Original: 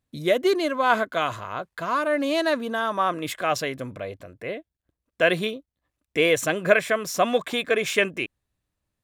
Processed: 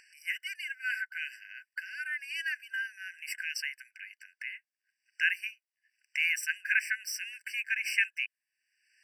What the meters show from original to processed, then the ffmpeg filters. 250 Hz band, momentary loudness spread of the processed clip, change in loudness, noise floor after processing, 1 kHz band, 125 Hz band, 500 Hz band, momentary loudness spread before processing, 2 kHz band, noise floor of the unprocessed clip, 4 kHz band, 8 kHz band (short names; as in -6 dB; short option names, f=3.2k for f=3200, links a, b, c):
under -40 dB, 14 LU, -9.0 dB, under -85 dBFS, under -35 dB, under -40 dB, under -40 dB, 14 LU, -3.5 dB, -85 dBFS, -9.0 dB, -6.5 dB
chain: -filter_complex "[0:a]acrossover=split=130|7700[a][b][c];[b]acompressor=mode=upward:threshold=-25dB:ratio=2.5[d];[a][d][c]amix=inputs=3:normalize=0,afftfilt=real='re*eq(mod(floor(b*sr/1024/1500),2),1)':imag='im*eq(mod(floor(b*sr/1024/1500),2),1)':win_size=1024:overlap=0.75,volume=-3dB"